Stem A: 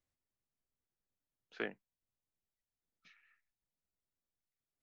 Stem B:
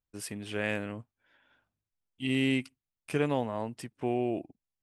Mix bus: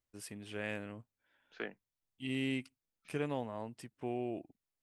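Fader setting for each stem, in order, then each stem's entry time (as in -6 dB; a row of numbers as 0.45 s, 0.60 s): -2.0 dB, -8.0 dB; 0.00 s, 0.00 s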